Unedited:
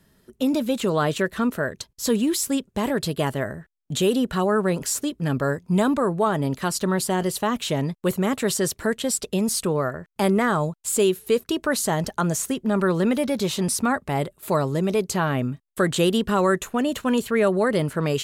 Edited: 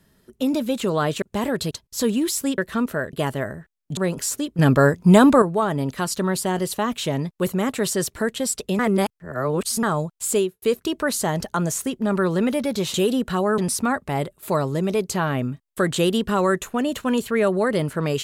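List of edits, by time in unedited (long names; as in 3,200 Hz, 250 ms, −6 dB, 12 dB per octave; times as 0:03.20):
0:01.22–0:01.77: swap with 0:02.64–0:03.13
0:03.97–0:04.61: move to 0:13.58
0:05.23–0:06.06: clip gain +8 dB
0:09.43–0:10.47: reverse
0:10.98–0:11.26: fade out and dull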